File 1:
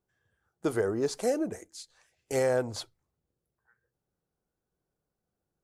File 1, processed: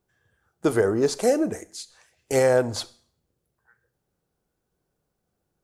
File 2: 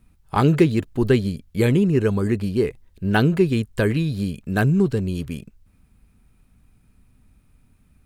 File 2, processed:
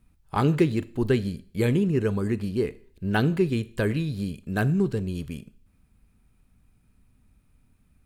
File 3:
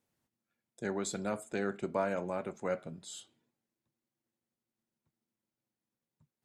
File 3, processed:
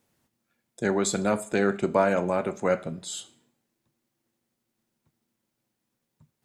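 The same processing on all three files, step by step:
four-comb reverb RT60 0.51 s, combs from 26 ms, DRR 17 dB
normalise the peak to −9 dBFS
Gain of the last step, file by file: +7.5, −5.0, +10.5 decibels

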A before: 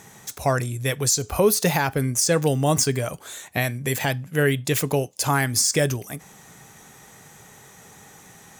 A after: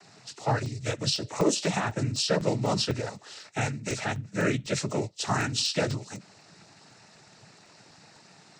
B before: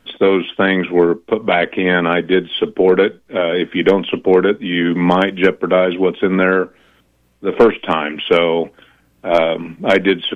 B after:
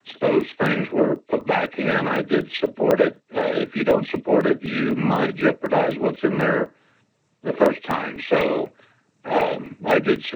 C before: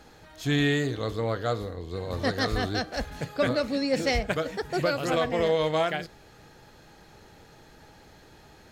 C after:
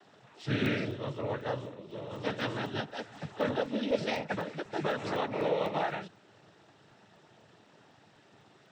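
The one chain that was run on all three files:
hearing-aid frequency compression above 2,000 Hz 1.5 to 1
cochlear-implant simulation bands 12
regular buffer underruns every 0.25 s, samples 64, zero, from 0:00.41
level −5.5 dB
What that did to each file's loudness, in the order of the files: −6.5, −6.0, −6.5 LU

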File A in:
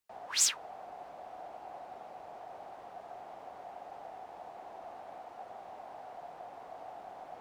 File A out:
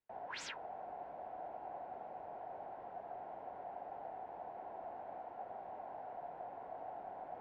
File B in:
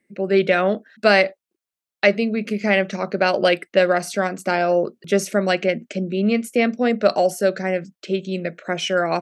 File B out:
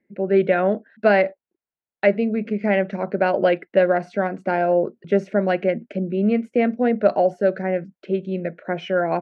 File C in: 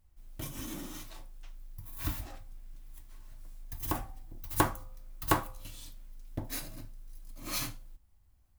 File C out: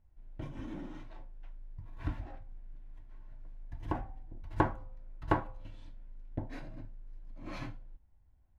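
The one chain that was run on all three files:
low-pass filter 1,600 Hz 12 dB per octave
notch filter 1,200 Hz, Q 5.7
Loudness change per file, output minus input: −8.5, −1.0, −3.5 LU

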